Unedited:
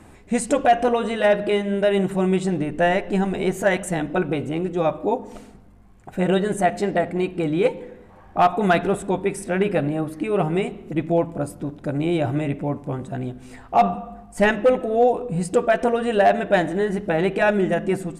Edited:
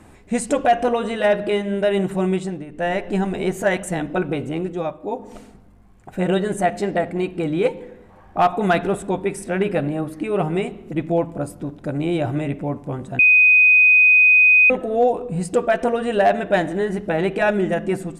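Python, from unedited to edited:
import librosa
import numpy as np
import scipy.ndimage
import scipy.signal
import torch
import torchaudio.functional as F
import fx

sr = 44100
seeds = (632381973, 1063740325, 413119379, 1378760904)

y = fx.edit(x, sr, fx.fade_down_up(start_s=2.28, length_s=0.77, db=-11.0, fade_s=0.38),
    fx.fade_down_up(start_s=4.62, length_s=0.72, db=-8.0, fade_s=0.34),
    fx.bleep(start_s=13.19, length_s=1.51, hz=2500.0, db=-9.0), tone=tone)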